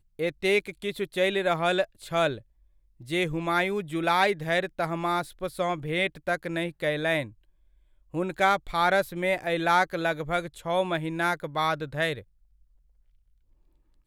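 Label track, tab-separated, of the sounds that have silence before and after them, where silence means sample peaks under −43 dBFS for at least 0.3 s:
3.000000	7.310000	sound
8.140000	12.220000	sound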